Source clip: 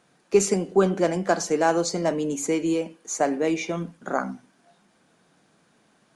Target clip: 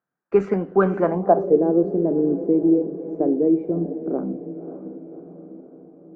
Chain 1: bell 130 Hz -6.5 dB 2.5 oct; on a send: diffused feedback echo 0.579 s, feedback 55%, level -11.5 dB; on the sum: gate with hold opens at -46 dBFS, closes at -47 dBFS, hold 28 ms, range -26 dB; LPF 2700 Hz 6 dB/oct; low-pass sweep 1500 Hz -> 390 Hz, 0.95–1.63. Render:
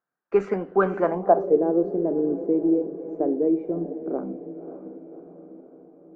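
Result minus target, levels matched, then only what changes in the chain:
125 Hz band -4.5 dB
change: bell 130 Hz +2 dB 2.5 oct

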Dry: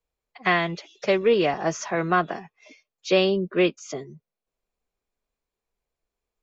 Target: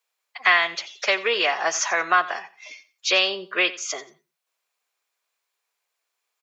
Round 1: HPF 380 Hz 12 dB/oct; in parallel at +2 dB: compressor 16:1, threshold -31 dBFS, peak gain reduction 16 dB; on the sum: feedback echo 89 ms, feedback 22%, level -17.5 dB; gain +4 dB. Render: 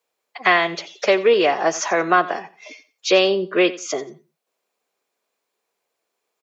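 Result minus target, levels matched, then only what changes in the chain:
500 Hz band +7.5 dB
change: HPF 1100 Hz 12 dB/oct

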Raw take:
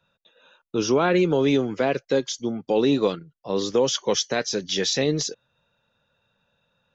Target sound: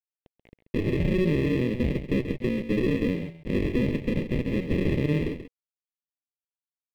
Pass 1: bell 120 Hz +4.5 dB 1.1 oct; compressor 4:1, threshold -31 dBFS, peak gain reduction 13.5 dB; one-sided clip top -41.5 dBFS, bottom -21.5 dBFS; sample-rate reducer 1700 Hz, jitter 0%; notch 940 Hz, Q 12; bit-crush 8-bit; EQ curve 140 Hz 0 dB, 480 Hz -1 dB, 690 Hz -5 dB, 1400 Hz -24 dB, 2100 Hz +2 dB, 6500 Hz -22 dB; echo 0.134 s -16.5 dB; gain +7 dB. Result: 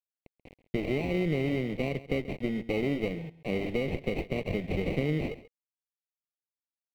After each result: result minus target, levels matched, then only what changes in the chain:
sample-rate reducer: distortion -14 dB; compressor: peak gain reduction +7 dB; echo-to-direct -6.5 dB
change: sample-rate reducer 740 Hz, jitter 0%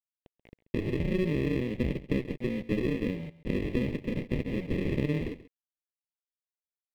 compressor: peak gain reduction +7 dB; echo-to-direct -6.5 dB
change: compressor 4:1, threshold -21.5 dBFS, peak gain reduction 6.5 dB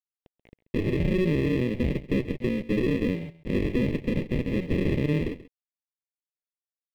echo-to-direct -6.5 dB
change: echo 0.134 s -10 dB

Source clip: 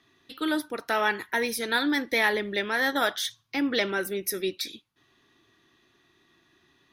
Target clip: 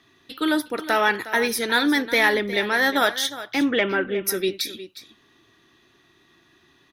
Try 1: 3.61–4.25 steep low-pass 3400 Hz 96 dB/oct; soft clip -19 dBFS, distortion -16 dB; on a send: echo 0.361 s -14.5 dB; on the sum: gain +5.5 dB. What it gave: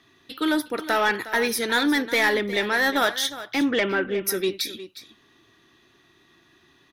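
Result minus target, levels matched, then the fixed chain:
soft clip: distortion +13 dB
3.61–4.25 steep low-pass 3400 Hz 96 dB/oct; soft clip -10 dBFS, distortion -30 dB; on a send: echo 0.361 s -14.5 dB; on the sum: gain +5.5 dB

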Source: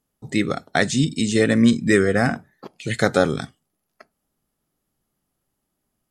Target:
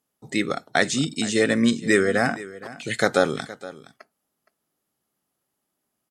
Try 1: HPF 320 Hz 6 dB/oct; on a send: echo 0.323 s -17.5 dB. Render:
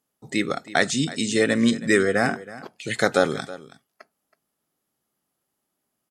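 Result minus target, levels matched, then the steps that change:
echo 0.144 s early
change: echo 0.467 s -17.5 dB

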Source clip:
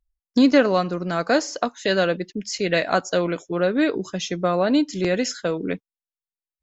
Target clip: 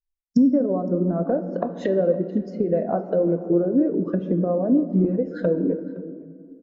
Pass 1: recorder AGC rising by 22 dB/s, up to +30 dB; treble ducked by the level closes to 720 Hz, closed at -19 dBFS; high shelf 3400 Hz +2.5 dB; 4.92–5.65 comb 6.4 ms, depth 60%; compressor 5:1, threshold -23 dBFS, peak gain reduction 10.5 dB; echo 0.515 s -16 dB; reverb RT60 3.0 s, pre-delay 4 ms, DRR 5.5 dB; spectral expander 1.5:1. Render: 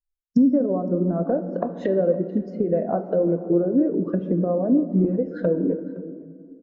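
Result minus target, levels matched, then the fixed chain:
8000 Hz band -7.5 dB
recorder AGC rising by 22 dB/s, up to +30 dB; treble ducked by the level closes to 720 Hz, closed at -19 dBFS; high shelf 3400 Hz +9 dB; 4.92–5.65 comb 6.4 ms, depth 60%; compressor 5:1, threshold -23 dBFS, peak gain reduction 11 dB; echo 0.515 s -16 dB; reverb RT60 3.0 s, pre-delay 4 ms, DRR 5.5 dB; spectral expander 1.5:1

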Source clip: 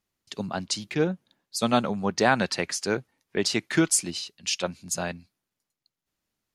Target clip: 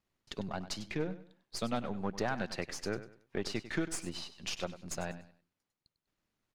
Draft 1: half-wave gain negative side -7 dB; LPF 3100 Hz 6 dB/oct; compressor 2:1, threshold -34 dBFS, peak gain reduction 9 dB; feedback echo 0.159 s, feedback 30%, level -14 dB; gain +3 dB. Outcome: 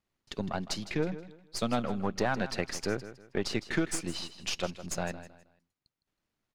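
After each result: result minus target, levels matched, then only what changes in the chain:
echo 61 ms late; compressor: peak gain reduction -5 dB
change: feedback echo 98 ms, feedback 30%, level -14 dB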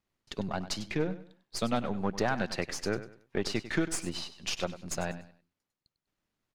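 compressor: peak gain reduction -5 dB
change: compressor 2:1, threshold -43.5 dBFS, peak gain reduction 14 dB

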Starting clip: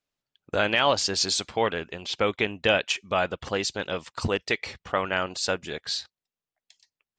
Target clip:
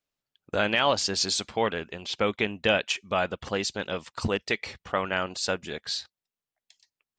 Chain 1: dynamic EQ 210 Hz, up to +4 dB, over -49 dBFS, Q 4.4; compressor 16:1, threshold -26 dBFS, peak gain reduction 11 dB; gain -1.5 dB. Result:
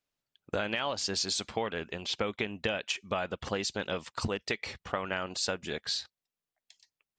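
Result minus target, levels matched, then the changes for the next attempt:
compressor: peak gain reduction +11 dB
remove: compressor 16:1, threshold -26 dBFS, peak gain reduction 11 dB

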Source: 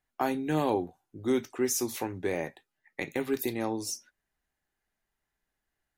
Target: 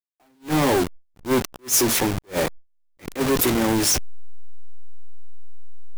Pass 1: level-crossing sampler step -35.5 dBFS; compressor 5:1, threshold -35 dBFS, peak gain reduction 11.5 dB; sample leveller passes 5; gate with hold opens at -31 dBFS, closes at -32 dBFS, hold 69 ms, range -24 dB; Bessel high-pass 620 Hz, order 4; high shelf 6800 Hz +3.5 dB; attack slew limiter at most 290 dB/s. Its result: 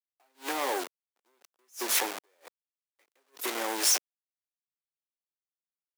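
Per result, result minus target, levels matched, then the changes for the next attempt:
compressor: peak gain reduction +11.5 dB; 500 Hz band -7.0 dB
remove: compressor 5:1, threshold -35 dBFS, peak gain reduction 11.5 dB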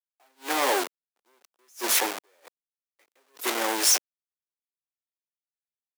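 500 Hz band -6.0 dB
remove: Bessel high-pass 620 Hz, order 4

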